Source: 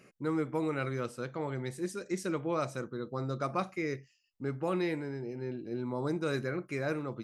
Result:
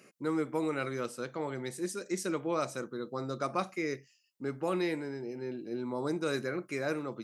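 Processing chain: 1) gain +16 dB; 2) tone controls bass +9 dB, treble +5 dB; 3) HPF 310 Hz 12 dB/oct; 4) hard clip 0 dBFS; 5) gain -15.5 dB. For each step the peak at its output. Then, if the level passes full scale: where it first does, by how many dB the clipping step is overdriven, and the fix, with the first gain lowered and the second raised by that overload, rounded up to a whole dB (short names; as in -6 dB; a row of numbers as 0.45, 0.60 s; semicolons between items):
-3.0, -2.0, -2.5, -2.5, -18.0 dBFS; no overload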